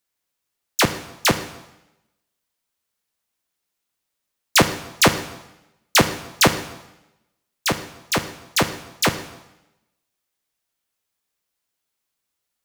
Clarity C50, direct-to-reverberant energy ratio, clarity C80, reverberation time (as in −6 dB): 11.5 dB, 9.0 dB, 13.5 dB, 0.95 s